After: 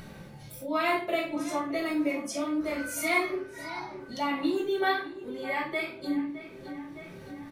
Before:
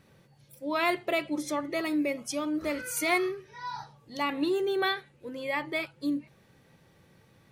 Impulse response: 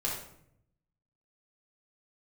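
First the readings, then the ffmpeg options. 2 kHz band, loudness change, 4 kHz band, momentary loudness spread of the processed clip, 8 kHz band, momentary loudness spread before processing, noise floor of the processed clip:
+0.5 dB, 0.0 dB, −2.0 dB, 15 LU, −1.5 dB, 12 LU, −47 dBFS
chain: -filter_complex "[0:a]asplit=2[link_01][link_02];[link_02]adelay=46,volume=-10.5dB[link_03];[link_01][link_03]amix=inputs=2:normalize=0,asplit=2[link_04][link_05];[link_05]adelay=613,lowpass=frequency=3400:poles=1,volume=-15dB,asplit=2[link_06][link_07];[link_07]adelay=613,lowpass=frequency=3400:poles=1,volume=0.47,asplit=2[link_08][link_09];[link_09]adelay=613,lowpass=frequency=3400:poles=1,volume=0.47,asplit=2[link_10][link_11];[link_11]adelay=613,lowpass=frequency=3400:poles=1,volume=0.47[link_12];[link_04][link_06][link_08][link_10][link_12]amix=inputs=5:normalize=0[link_13];[1:a]atrim=start_sample=2205,asetrate=79380,aresample=44100[link_14];[link_13][link_14]afir=irnorm=-1:irlink=0,acompressor=mode=upward:threshold=-31dB:ratio=2.5,volume=-1.5dB"

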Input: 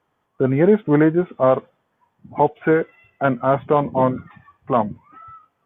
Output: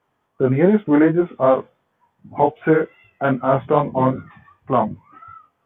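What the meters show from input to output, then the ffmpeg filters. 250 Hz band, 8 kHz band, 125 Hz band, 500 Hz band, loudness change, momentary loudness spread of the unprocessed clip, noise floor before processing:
+1.5 dB, can't be measured, +0.5 dB, 0.0 dB, +0.5 dB, 8 LU, −71 dBFS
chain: -af "flanger=delay=19:depth=5.1:speed=2.6,volume=3.5dB"

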